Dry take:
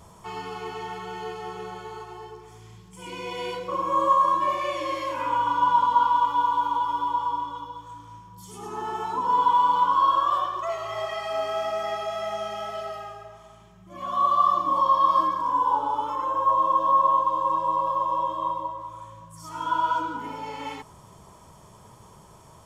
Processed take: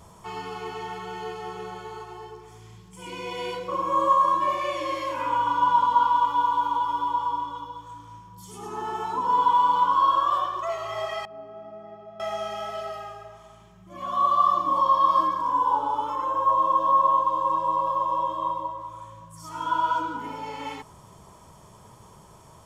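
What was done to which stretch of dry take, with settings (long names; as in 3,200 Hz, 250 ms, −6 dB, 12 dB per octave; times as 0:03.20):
0:11.25–0:12.20: resonant band-pass 200 Hz, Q 1.5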